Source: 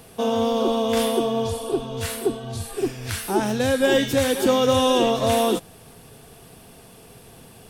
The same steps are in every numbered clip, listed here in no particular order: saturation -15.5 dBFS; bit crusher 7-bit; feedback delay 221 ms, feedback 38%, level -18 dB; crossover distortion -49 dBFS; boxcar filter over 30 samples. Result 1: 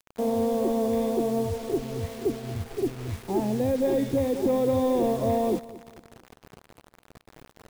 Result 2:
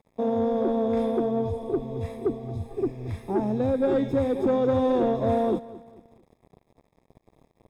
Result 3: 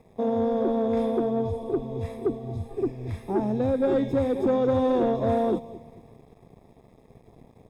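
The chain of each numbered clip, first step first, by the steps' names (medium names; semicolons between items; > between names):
saturation > boxcar filter > bit crusher > crossover distortion > feedback delay; crossover distortion > bit crusher > boxcar filter > saturation > feedback delay; feedback delay > bit crusher > crossover distortion > boxcar filter > saturation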